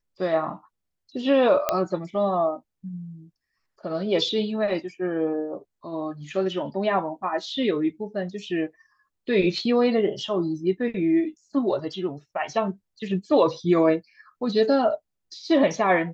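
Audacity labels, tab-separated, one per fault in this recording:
1.690000	1.690000	pop -7 dBFS

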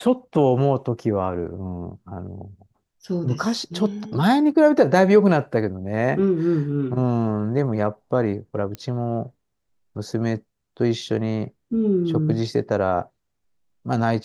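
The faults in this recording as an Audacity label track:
8.750000	8.750000	pop -17 dBFS

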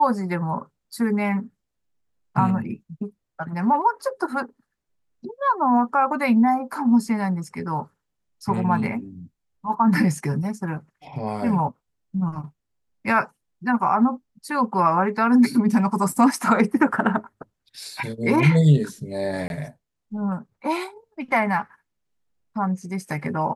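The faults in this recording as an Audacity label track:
19.480000	19.500000	dropout 21 ms

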